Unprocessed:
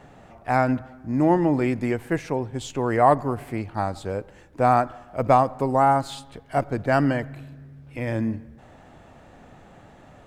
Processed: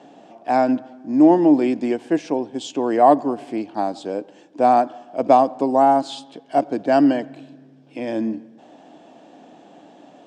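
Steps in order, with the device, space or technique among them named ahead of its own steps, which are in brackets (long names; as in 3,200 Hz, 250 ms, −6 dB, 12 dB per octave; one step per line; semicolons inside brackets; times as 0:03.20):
television speaker (loudspeaker in its box 200–8,000 Hz, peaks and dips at 300 Hz +9 dB, 690 Hz +5 dB, 1,300 Hz −9 dB, 2,000 Hz −8 dB, 3,200 Hz +5 dB, 5,200 Hz +4 dB)
level +1.5 dB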